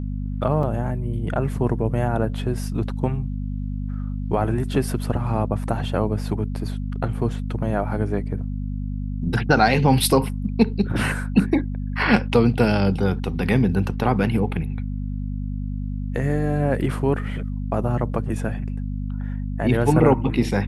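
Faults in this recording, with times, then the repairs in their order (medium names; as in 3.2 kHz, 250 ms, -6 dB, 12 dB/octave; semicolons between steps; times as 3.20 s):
hum 50 Hz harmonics 5 -27 dBFS
0.63 s: dropout 2.6 ms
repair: de-hum 50 Hz, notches 5; interpolate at 0.63 s, 2.6 ms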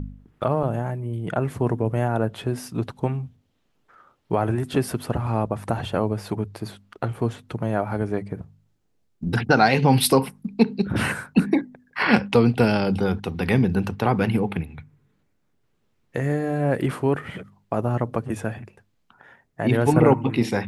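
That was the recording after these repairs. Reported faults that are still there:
nothing left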